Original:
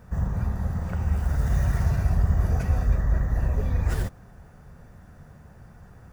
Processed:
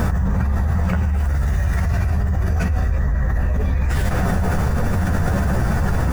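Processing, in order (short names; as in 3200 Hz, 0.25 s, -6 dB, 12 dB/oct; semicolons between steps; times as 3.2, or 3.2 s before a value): chorus voices 4, 0.39 Hz, delay 13 ms, depth 3.1 ms; dynamic EQ 2200 Hz, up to +5 dB, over -58 dBFS, Q 0.95; fast leveller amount 100%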